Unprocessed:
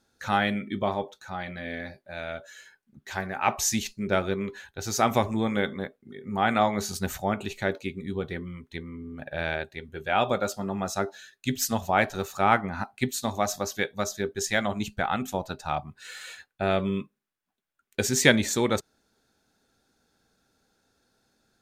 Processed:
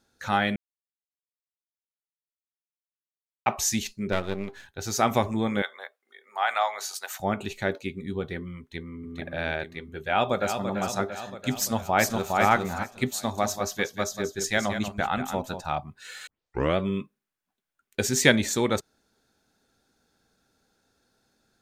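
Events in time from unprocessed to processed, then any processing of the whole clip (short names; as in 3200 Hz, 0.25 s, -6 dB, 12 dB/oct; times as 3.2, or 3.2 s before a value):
0.56–3.46 mute
4.12–4.68 half-wave gain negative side -12 dB
5.62–7.2 HPF 680 Hz 24 dB/oct
8.59–9.07 echo throw 0.44 s, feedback 45%, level -2.5 dB
10.01–10.67 echo throw 0.34 s, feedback 65%, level -7.5 dB
11.57–12.38 echo throw 0.41 s, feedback 25%, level -2.5 dB
13.19–15.66 echo 0.187 s -9 dB
16.27 tape start 0.50 s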